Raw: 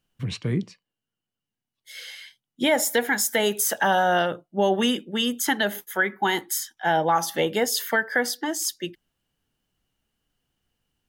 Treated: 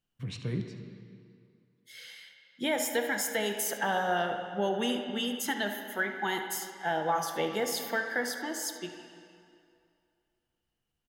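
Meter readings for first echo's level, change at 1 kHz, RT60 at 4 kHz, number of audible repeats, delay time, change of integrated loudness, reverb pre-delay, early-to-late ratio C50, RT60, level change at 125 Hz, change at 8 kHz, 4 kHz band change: -14.5 dB, -8.0 dB, 1.9 s, 1, 74 ms, -8.0 dB, 3 ms, 5.5 dB, 2.5 s, -7.0 dB, -8.5 dB, -8.0 dB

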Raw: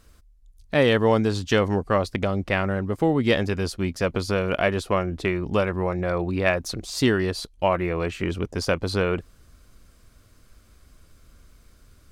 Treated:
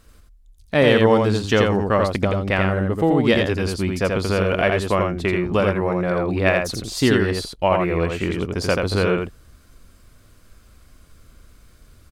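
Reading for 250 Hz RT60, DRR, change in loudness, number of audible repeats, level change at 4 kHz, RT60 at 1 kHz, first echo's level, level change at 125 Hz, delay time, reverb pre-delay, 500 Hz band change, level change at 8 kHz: none, none, +4.0 dB, 1, +3.5 dB, none, -3.5 dB, +4.0 dB, 84 ms, none, +4.0 dB, +3.0 dB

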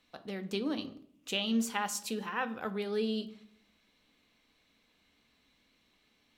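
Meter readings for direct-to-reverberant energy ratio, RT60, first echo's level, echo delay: 9.5 dB, 0.65 s, none, none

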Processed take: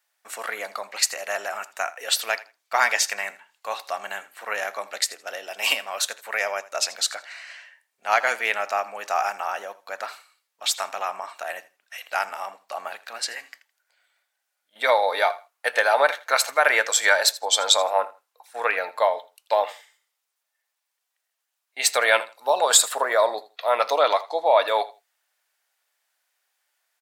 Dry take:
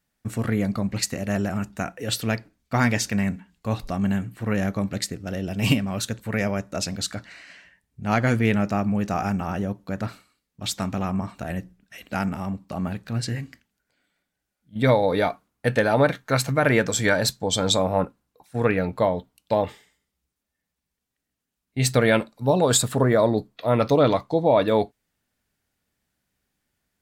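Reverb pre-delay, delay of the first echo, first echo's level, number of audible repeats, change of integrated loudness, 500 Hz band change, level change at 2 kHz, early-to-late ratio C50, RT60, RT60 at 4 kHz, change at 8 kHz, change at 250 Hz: none, 81 ms, -18.5 dB, 2, +1.0 dB, -2.0 dB, +5.0 dB, none, none, none, +5.0 dB, -26.5 dB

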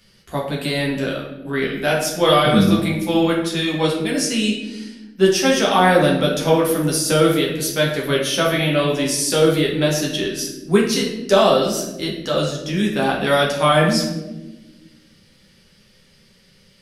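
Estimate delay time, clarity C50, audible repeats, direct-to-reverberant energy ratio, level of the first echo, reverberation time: none, 4.5 dB, none, -3.5 dB, none, 1.1 s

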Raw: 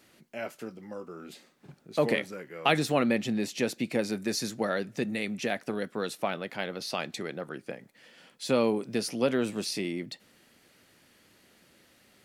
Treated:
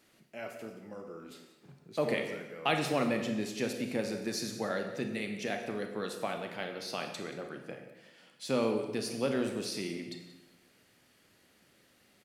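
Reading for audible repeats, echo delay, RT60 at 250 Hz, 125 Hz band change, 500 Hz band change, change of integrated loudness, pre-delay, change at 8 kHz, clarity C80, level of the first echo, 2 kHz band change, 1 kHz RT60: 1, 0.179 s, 1.2 s, -4.0 dB, -4.0 dB, -4.5 dB, 26 ms, -4.5 dB, 8.0 dB, -16.0 dB, -4.5 dB, 1.0 s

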